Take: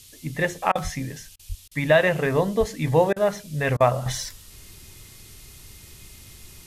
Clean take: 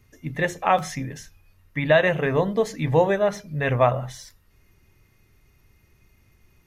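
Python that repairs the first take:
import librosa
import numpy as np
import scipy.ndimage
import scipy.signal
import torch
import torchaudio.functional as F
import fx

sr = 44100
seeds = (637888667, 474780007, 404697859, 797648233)

y = fx.fix_deplosive(x, sr, at_s=(0.83, 1.48, 2.59))
y = fx.fix_interpolate(y, sr, at_s=(0.72, 1.36, 1.68, 3.13, 3.77), length_ms=32.0)
y = fx.noise_reduce(y, sr, print_start_s=1.25, print_end_s=1.75, reduce_db=13.0)
y = fx.fix_level(y, sr, at_s=4.06, step_db=-11.0)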